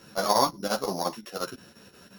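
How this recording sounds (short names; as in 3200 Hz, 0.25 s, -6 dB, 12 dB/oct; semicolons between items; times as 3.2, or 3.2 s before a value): a buzz of ramps at a fixed pitch in blocks of 8 samples; chopped level 5.7 Hz, depth 65%, duty 80%; a shimmering, thickened sound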